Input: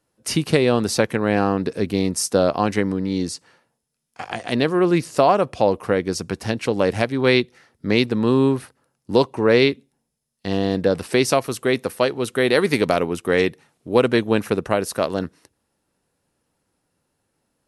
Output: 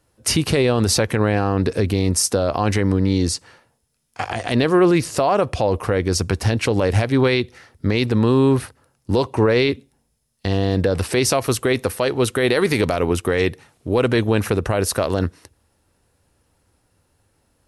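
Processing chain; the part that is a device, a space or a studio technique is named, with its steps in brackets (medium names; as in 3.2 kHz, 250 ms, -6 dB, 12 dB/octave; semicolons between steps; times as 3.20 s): car stereo with a boomy subwoofer (resonant low shelf 120 Hz +8 dB, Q 1.5; peak limiter -15 dBFS, peak gain reduction 10.5 dB); trim +7 dB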